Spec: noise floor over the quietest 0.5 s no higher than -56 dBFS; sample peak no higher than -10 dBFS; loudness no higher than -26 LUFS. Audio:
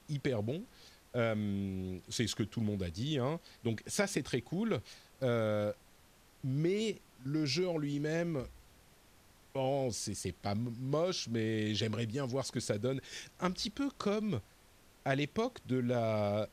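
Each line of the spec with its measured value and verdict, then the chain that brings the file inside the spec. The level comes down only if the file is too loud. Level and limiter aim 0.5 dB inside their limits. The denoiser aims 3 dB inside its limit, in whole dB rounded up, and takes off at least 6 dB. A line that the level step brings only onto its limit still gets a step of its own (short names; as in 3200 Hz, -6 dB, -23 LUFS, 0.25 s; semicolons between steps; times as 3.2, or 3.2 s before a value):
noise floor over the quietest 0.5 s -63 dBFS: OK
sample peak -16.5 dBFS: OK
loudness -36.0 LUFS: OK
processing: none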